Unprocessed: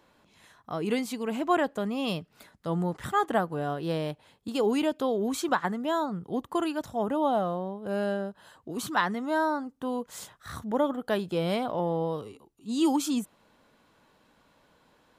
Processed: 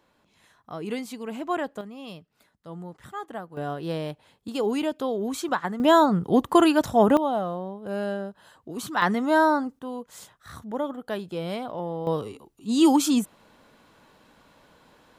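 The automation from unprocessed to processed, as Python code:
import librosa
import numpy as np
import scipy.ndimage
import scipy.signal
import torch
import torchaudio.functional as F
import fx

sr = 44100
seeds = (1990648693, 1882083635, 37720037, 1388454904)

y = fx.gain(x, sr, db=fx.steps((0.0, -3.0), (1.81, -10.0), (3.57, 0.0), (5.8, 11.0), (7.17, 0.0), (9.02, 7.0), (9.79, -3.0), (12.07, 6.5)))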